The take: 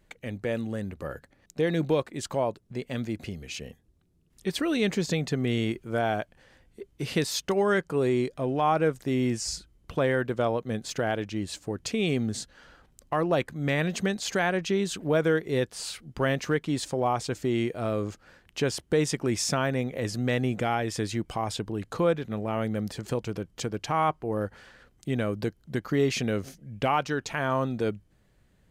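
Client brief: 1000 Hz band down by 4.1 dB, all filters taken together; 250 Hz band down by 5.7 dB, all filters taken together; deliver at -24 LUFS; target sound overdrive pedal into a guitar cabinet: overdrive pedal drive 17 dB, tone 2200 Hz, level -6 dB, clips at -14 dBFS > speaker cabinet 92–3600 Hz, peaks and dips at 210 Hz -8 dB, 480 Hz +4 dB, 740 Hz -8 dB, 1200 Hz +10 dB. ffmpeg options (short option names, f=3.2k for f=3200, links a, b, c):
-filter_complex "[0:a]equalizer=f=250:t=o:g=-4.5,equalizer=f=1k:t=o:g=-8,asplit=2[a][b];[b]highpass=f=720:p=1,volume=17dB,asoftclip=type=tanh:threshold=-14dB[c];[a][c]amix=inputs=2:normalize=0,lowpass=f=2.2k:p=1,volume=-6dB,highpass=92,equalizer=f=210:t=q:w=4:g=-8,equalizer=f=480:t=q:w=4:g=4,equalizer=f=740:t=q:w=4:g=-8,equalizer=f=1.2k:t=q:w=4:g=10,lowpass=f=3.6k:w=0.5412,lowpass=f=3.6k:w=1.3066,volume=3dB"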